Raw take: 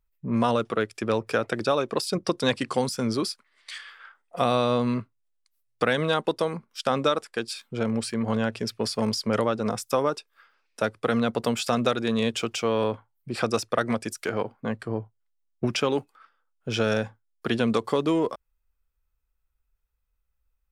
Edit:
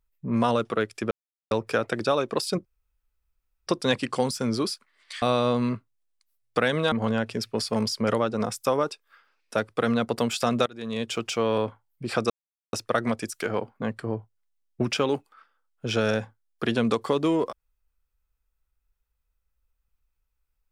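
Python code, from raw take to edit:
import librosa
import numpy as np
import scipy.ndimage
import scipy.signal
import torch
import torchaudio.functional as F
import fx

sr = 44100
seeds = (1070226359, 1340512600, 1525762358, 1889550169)

y = fx.edit(x, sr, fx.insert_silence(at_s=1.11, length_s=0.4),
    fx.insert_room_tone(at_s=2.25, length_s=1.02),
    fx.cut(start_s=3.8, length_s=0.67),
    fx.cut(start_s=6.17, length_s=2.01),
    fx.fade_in_from(start_s=11.92, length_s=0.59, floor_db=-23.5),
    fx.insert_silence(at_s=13.56, length_s=0.43), tone=tone)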